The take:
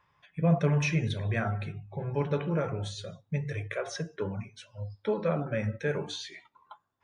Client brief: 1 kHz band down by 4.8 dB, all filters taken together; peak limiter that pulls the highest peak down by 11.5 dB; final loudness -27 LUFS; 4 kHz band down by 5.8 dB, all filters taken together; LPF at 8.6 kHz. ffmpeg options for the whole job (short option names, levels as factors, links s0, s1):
-af "lowpass=8600,equalizer=f=1000:t=o:g=-7,equalizer=f=4000:t=o:g=-6.5,volume=2.99,alimiter=limit=0.141:level=0:latency=1"